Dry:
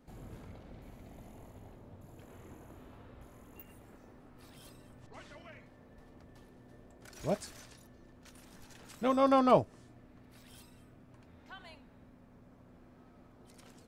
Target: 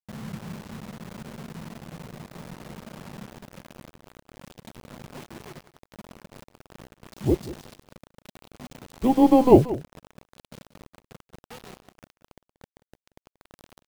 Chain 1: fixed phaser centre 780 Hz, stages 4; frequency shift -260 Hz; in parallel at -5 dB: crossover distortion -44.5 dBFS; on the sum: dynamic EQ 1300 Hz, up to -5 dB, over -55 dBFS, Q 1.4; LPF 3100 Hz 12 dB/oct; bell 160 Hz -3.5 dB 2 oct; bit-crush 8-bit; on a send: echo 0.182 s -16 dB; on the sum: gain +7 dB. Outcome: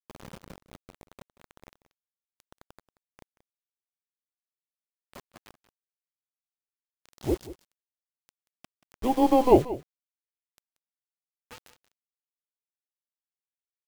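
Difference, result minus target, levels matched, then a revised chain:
125 Hz band -5.5 dB
fixed phaser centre 780 Hz, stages 4; frequency shift -260 Hz; in parallel at -5 dB: crossover distortion -44.5 dBFS; on the sum: dynamic EQ 1300 Hz, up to -5 dB, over -55 dBFS, Q 1.4; LPF 3100 Hz 12 dB/oct; bell 160 Hz +7 dB 2 oct; bit-crush 8-bit; on a send: echo 0.182 s -16 dB; on the sum: gain +7 dB

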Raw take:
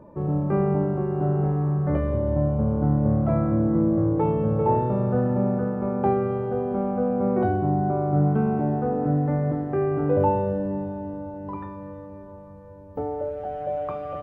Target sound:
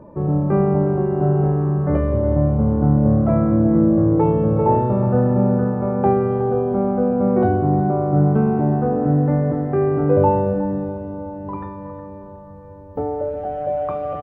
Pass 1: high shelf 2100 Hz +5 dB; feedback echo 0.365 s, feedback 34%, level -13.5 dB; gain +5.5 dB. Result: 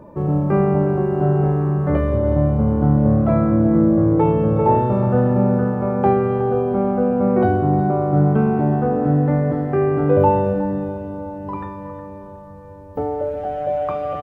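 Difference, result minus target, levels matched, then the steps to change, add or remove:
4000 Hz band +7.5 dB
change: high shelf 2100 Hz -6 dB

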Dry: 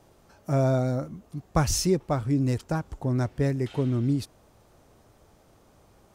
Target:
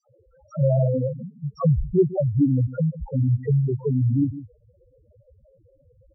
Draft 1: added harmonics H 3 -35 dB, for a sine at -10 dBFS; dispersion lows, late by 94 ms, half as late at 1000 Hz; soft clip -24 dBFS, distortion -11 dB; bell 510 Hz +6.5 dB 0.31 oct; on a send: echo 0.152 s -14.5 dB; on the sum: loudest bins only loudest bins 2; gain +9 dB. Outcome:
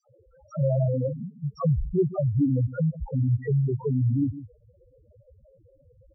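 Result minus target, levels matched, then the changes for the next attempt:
soft clip: distortion +12 dB
change: soft clip -14.5 dBFS, distortion -23 dB

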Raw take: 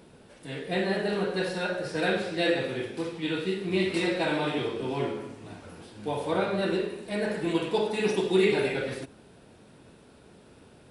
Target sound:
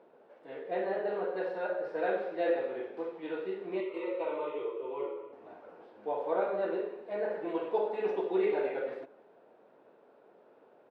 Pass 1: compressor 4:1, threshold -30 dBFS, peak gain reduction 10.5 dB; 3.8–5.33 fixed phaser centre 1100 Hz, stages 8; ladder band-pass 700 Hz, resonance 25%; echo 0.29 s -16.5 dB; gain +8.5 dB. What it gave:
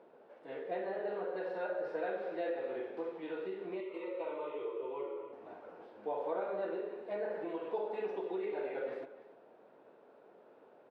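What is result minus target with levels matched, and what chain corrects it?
compressor: peak gain reduction +10.5 dB; echo-to-direct +12 dB
3.8–5.33 fixed phaser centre 1100 Hz, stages 8; ladder band-pass 700 Hz, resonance 25%; echo 0.29 s -28.5 dB; gain +8.5 dB

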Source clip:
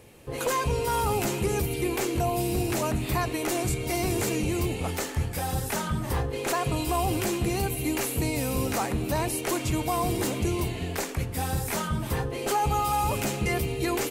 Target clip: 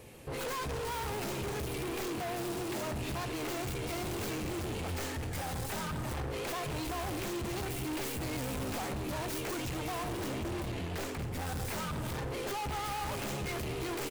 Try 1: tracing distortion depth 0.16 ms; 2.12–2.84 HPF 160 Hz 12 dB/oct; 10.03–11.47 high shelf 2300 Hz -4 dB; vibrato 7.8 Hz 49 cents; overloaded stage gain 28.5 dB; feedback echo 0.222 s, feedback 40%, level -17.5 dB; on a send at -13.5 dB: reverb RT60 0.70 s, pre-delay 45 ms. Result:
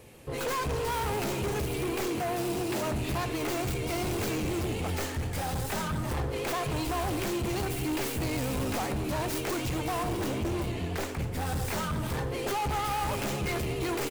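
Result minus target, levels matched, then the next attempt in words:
overloaded stage: distortion -4 dB
tracing distortion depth 0.16 ms; 2.12–2.84 HPF 160 Hz 12 dB/oct; 10.03–11.47 high shelf 2300 Hz -4 dB; vibrato 7.8 Hz 49 cents; overloaded stage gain 35.5 dB; feedback echo 0.222 s, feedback 40%, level -17.5 dB; on a send at -13.5 dB: reverb RT60 0.70 s, pre-delay 45 ms

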